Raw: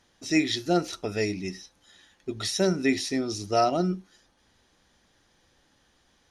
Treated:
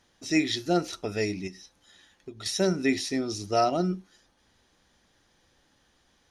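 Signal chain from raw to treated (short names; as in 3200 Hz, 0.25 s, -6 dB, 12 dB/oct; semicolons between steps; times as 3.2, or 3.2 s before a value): 1.47–2.46 compressor 6:1, threshold -38 dBFS, peak gain reduction 11 dB; gain -1 dB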